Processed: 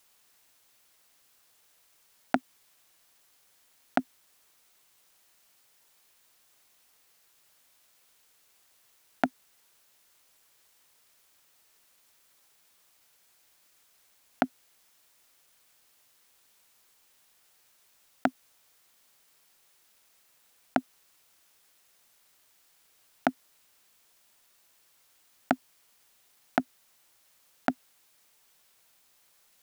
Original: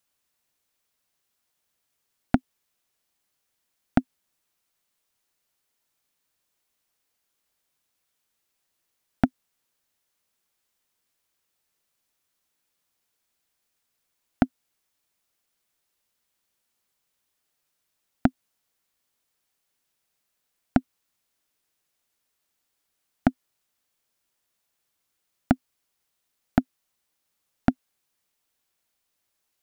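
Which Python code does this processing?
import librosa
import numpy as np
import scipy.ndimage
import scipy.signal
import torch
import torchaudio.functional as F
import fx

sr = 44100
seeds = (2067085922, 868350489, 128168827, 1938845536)

y = scipy.signal.sosfilt(scipy.signal.butter(2, 470.0, 'highpass', fs=sr, output='sos'), x)
y = fx.over_compress(y, sr, threshold_db=-29.0, ratio=-1.0)
y = fx.quant_dither(y, sr, seeds[0], bits=12, dither='none')
y = y * librosa.db_to_amplitude(7.0)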